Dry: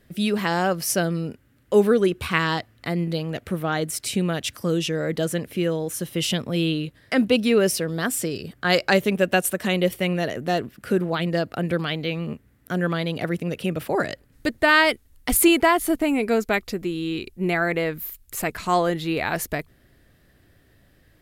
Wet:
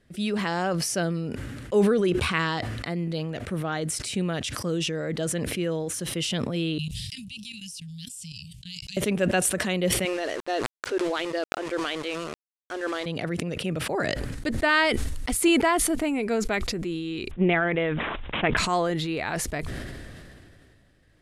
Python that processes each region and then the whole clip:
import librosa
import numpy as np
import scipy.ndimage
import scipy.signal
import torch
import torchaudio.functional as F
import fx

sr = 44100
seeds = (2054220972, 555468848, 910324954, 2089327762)

y = fx.chain(x, sr, fx.cheby1_bandstop(low_hz=170.0, high_hz=2700.0, order=4),
    fx.bass_treble(bass_db=-1, treble_db=6),
    fx.level_steps(step_db=17), at=(6.78, 8.97))
y = fx.chain(y, sr, fx.brickwall_bandpass(low_hz=260.0, high_hz=6500.0),
    fx.sample_gate(floor_db=-34.0), at=(10.05, 13.06))
y = fx.chain(y, sr, fx.transient(attack_db=10, sustain_db=5),
    fx.resample_bad(factor=6, down='none', up='filtered'), at=(17.31, 18.57))
y = scipy.signal.sosfilt(scipy.signal.butter(4, 10000.0, 'lowpass', fs=sr, output='sos'), y)
y = fx.sustainer(y, sr, db_per_s=24.0)
y = y * librosa.db_to_amplitude(-5.0)